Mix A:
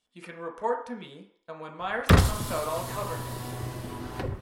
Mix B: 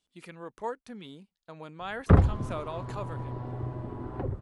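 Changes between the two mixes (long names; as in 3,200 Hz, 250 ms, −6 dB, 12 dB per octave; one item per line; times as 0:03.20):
background: add low-pass filter 1,100 Hz 12 dB per octave
reverb: off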